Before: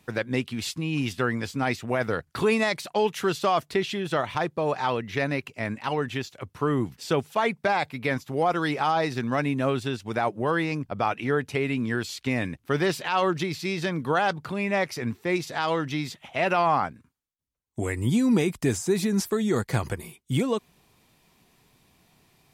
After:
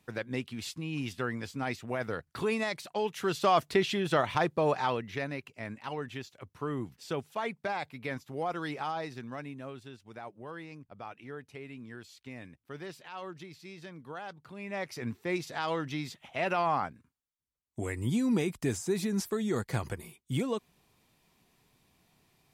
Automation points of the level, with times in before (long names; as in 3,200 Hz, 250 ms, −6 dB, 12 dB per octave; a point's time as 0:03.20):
0:03.13 −8 dB
0:03.53 −1 dB
0:04.66 −1 dB
0:05.32 −10 dB
0:08.79 −10 dB
0:09.74 −18.5 dB
0:14.38 −18.5 dB
0:15.04 −6.5 dB